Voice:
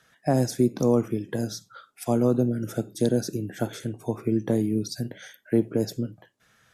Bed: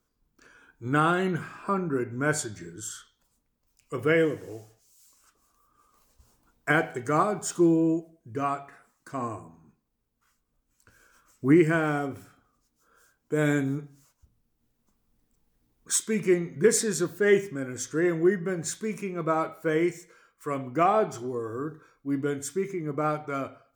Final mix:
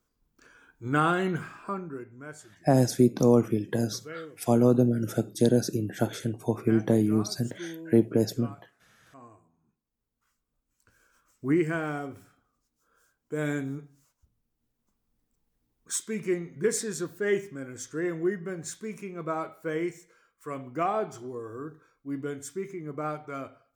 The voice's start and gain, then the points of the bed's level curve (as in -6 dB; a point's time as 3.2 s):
2.40 s, +1.0 dB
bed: 1.47 s -1 dB
2.35 s -18.5 dB
9.49 s -18.5 dB
10.03 s -5.5 dB